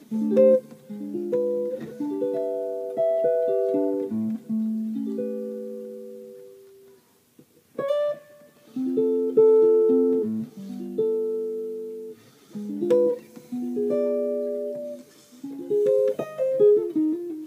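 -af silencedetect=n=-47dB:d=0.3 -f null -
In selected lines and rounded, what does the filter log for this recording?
silence_start: 6.99
silence_end: 7.39 | silence_duration: 0.40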